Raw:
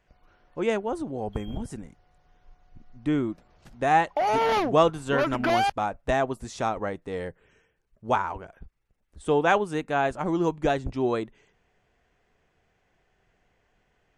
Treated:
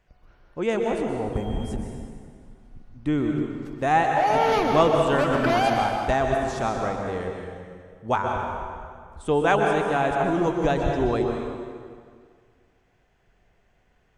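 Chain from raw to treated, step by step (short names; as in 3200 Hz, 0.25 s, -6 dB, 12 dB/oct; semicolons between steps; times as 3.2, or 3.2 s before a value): low shelf 130 Hz +5 dB; plate-style reverb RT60 2 s, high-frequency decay 0.8×, pre-delay 0.11 s, DRR 1.5 dB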